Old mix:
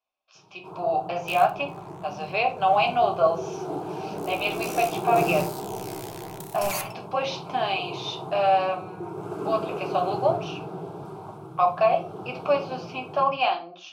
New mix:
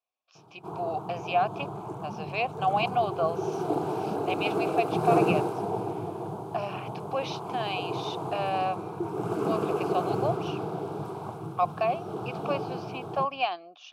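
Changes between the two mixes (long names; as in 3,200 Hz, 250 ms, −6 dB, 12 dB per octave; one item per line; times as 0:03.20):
first sound +8.0 dB
second sound: muted
reverb: off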